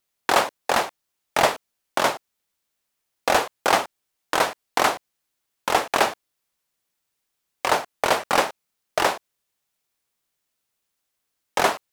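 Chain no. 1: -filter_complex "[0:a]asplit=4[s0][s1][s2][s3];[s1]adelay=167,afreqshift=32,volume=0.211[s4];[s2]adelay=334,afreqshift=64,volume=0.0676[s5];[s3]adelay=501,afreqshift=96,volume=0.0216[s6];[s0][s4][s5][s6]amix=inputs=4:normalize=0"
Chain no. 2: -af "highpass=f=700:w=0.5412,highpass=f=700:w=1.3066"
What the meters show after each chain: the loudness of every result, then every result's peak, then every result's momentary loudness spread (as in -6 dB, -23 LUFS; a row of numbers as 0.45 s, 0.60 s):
-23.5 LUFS, -24.5 LUFS; -4.5 dBFS, -5.5 dBFS; 13 LU, 11 LU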